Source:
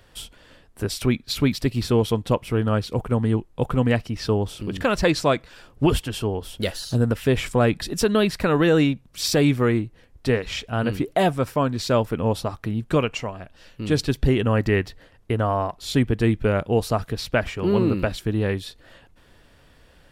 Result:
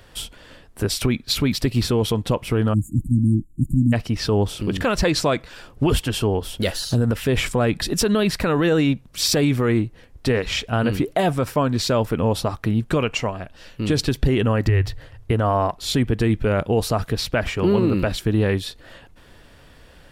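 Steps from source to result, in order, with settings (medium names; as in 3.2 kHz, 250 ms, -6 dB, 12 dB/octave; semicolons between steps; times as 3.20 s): 2.73–3.93 s: spectral selection erased 340–6700 Hz; 14.68–15.31 s: resonant low shelf 150 Hz +7 dB, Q 3; peak limiter -15 dBFS, peak gain reduction 11 dB; trim +5.5 dB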